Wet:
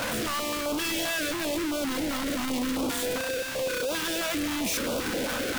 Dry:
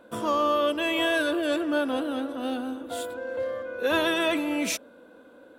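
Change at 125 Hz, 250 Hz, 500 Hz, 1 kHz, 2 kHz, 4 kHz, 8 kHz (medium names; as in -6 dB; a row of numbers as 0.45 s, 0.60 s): +7.5 dB, -1.0 dB, -3.5 dB, -4.5 dB, -1.5 dB, +1.5 dB, +7.5 dB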